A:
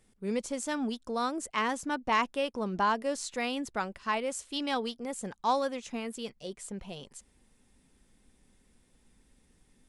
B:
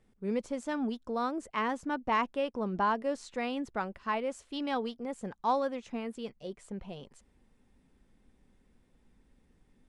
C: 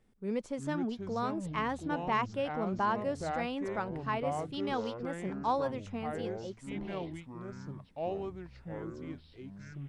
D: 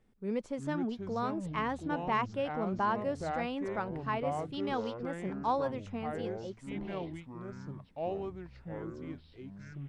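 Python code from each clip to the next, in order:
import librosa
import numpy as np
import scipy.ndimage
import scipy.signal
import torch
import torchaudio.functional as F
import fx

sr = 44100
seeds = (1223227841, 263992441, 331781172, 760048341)

y1 = fx.lowpass(x, sr, hz=1700.0, slope=6)
y2 = fx.echo_pitch(y1, sr, ms=271, semitones=-6, count=3, db_per_echo=-6.0)
y2 = F.gain(torch.from_numpy(y2), -2.0).numpy()
y3 = fx.high_shelf(y2, sr, hz=5300.0, db=-6.0)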